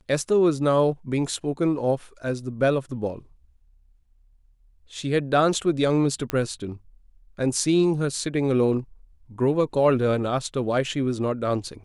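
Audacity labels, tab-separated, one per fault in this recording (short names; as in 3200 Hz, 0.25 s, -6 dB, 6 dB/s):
6.300000	6.300000	pop -11 dBFS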